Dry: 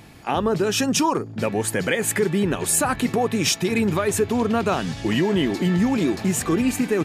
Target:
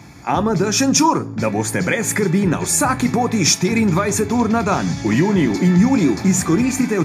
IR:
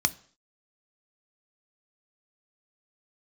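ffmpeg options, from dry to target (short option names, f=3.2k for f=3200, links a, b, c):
-filter_complex "[0:a]equalizer=f=3.1k:w=5.8:g=-7[a];[1:a]atrim=start_sample=2205[b];[a][b]afir=irnorm=-1:irlink=0,volume=-4.5dB"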